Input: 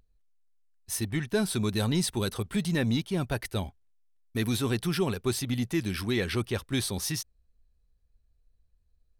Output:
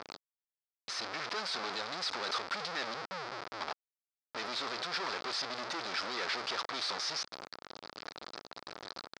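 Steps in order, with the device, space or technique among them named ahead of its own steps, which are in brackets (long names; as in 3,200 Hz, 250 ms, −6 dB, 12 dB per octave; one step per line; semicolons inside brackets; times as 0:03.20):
0:02.94–0:03.61: inverse Chebyshev low-pass filter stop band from 670 Hz, stop band 70 dB
home computer beeper (sign of each sample alone; loudspeaker in its box 620–4,900 Hz, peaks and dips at 1,300 Hz +5 dB, 2,900 Hz −5 dB, 4,900 Hz +7 dB)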